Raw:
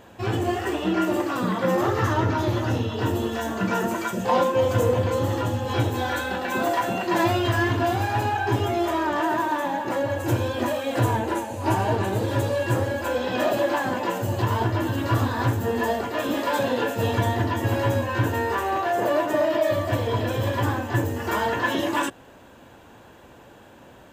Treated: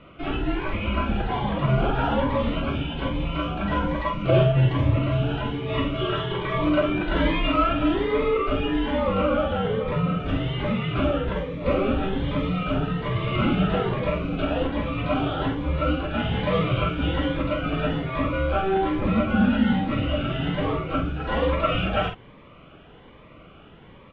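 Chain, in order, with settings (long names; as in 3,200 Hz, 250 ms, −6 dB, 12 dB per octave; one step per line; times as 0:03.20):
low-shelf EQ 410 Hz −10.5 dB
double-tracking delay 48 ms −6.5 dB
frequency shifter −390 Hz
elliptic low-pass filter 3,300 Hz, stop band 80 dB
phaser whose notches keep moving one way rising 1.2 Hz
level +5.5 dB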